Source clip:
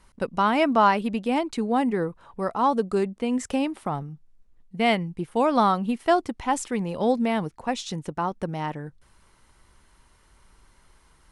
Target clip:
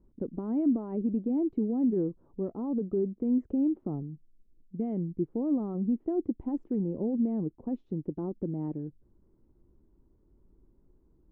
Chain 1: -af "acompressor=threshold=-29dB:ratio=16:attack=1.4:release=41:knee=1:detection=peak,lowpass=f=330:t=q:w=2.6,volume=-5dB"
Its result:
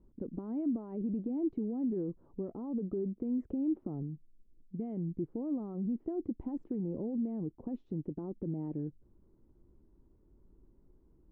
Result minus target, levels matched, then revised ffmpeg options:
compressor: peak gain reduction +7 dB
-af "acompressor=threshold=-21.5dB:ratio=16:attack=1.4:release=41:knee=1:detection=peak,lowpass=f=330:t=q:w=2.6,volume=-5dB"

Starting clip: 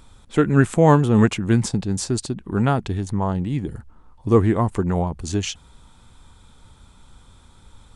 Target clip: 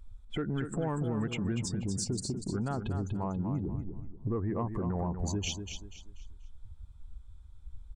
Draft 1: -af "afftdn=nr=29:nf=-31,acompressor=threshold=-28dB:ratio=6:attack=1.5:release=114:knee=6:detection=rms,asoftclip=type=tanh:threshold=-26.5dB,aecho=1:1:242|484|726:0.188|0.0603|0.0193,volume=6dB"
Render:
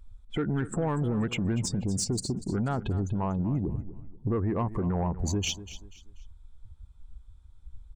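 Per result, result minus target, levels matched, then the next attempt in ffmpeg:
compressor: peak gain reduction -6 dB; echo-to-direct -7 dB
-af "afftdn=nr=29:nf=-31,acompressor=threshold=-35dB:ratio=6:attack=1.5:release=114:knee=6:detection=rms,asoftclip=type=tanh:threshold=-26.5dB,aecho=1:1:242|484|726:0.188|0.0603|0.0193,volume=6dB"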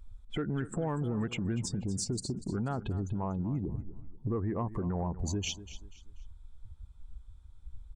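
echo-to-direct -7 dB
-af "afftdn=nr=29:nf=-31,acompressor=threshold=-35dB:ratio=6:attack=1.5:release=114:knee=6:detection=rms,asoftclip=type=tanh:threshold=-26.5dB,aecho=1:1:242|484|726|968:0.422|0.135|0.0432|0.0138,volume=6dB"

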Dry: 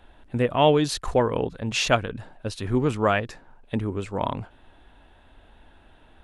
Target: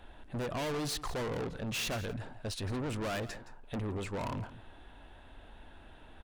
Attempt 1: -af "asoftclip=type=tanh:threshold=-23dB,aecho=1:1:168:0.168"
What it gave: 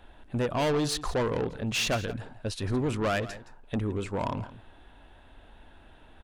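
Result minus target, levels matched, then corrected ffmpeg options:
soft clip: distortion -5 dB
-af "asoftclip=type=tanh:threshold=-33.5dB,aecho=1:1:168:0.168"

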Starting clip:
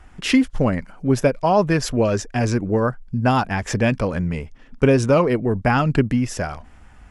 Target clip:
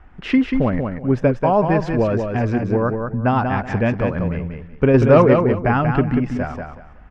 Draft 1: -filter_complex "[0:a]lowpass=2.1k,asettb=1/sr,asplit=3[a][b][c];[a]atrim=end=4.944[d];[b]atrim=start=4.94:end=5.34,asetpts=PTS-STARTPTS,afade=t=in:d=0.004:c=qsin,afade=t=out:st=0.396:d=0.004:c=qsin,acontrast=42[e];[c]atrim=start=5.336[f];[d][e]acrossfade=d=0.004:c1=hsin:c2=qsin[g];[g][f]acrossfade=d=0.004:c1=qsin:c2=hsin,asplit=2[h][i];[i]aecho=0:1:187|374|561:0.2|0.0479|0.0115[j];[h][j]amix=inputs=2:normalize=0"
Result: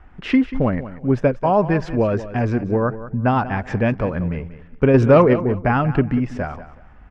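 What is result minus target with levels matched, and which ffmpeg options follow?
echo-to-direct -8.5 dB
-filter_complex "[0:a]lowpass=2.1k,asettb=1/sr,asplit=3[a][b][c];[a]atrim=end=4.944[d];[b]atrim=start=4.94:end=5.34,asetpts=PTS-STARTPTS,afade=t=in:d=0.004:c=qsin,afade=t=out:st=0.396:d=0.004:c=qsin,acontrast=42[e];[c]atrim=start=5.336[f];[d][e]acrossfade=d=0.004:c1=hsin:c2=qsin[g];[g][f]acrossfade=d=0.004:c1=qsin:c2=hsin,asplit=2[h][i];[i]aecho=0:1:187|374|561:0.531|0.127|0.0306[j];[h][j]amix=inputs=2:normalize=0"

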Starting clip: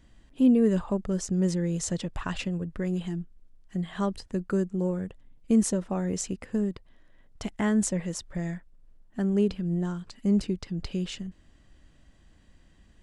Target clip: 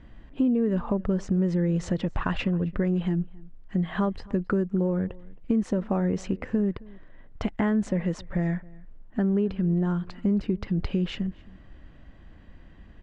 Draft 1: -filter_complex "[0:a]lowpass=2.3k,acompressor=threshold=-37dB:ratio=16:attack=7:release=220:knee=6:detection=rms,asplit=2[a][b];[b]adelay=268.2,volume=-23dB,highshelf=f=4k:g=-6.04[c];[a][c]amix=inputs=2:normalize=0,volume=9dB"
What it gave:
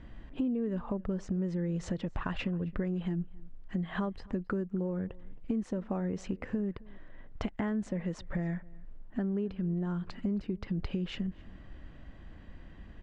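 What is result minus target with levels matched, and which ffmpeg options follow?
compressor: peak gain reduction +8.5 dB
-filter_complex "[0:a]lowpass=2.3k,acompressor=threshold=-28dB:ratio=16:attack=7:release=220:knee=6:detection=rms,asplit=2[a][b];[b]adelay=268.2,volume=-23dB,highshelf=f=4k:g=-6.04[c];[a][c]amix=inputs=2:normalize=0,volume=9dB"

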